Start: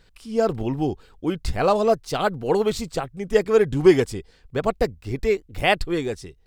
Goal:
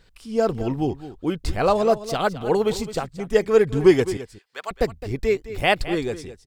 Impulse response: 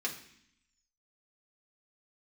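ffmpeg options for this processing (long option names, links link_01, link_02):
-filter_complex "[0:a]asettb=1/sr,asplit=3[link_01][link_02][link_03];[link_01]atrim=end=4.174[link_04];[link_02]atrim=start=4.17:end=4.71,asetpts=PTS-STARTPTS,afade=type=in:duration=0.004:curve=qsin,afade=type=out:start_time=0.536:duration=0.004:curve=qsin,highpass=1200[link_05];[link_03]atrim=start=4.706[link_06];[link_04][link_05]acrossfade=duration=0.004:curve1=hsin:curve2=qsin[link_07];[link_07][link_06]acrossfade=duration=0.004:curve1=qsin:curve2=hsin,aecho=1:1:213:0.2"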